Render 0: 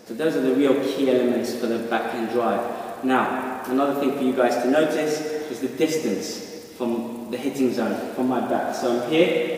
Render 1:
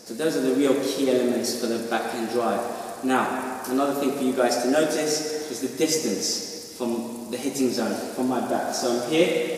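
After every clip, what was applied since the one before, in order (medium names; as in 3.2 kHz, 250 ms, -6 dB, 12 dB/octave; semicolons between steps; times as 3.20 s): high-order bell 7.2 kHz +10.5 dB; trim -2 dB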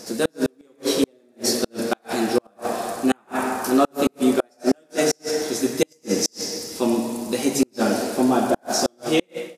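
fade out at the end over 0.56 s; inverted gate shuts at -13 dBFS, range -40 dB; trim +6 dB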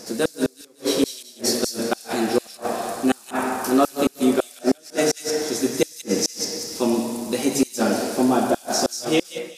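feedback echo behind a high-pass 187 ms, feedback 33%, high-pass 4 kHz, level -5.5 dB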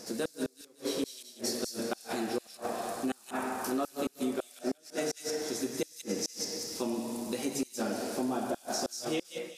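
compression 2.5:1, threshold -25 dBFS, peak gain reduction 8.5 dB; trim -7 dB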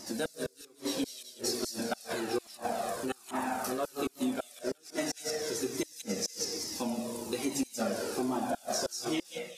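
Shepard-style flanger falling 1.2 Hz; trim +5.5 dB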